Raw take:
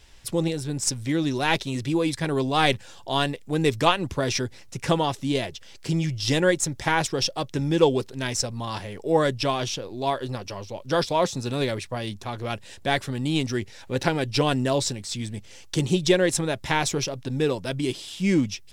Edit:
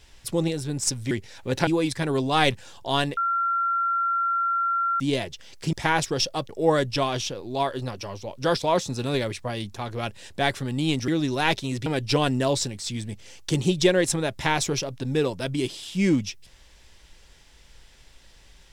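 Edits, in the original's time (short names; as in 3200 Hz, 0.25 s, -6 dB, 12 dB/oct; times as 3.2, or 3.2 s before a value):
1.11–1.89 swap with 13.55–14.11
3.39–5.22 bleep 1370 Hz -21 dBFS
5.95–6.75 cut
7.51–8.96 cut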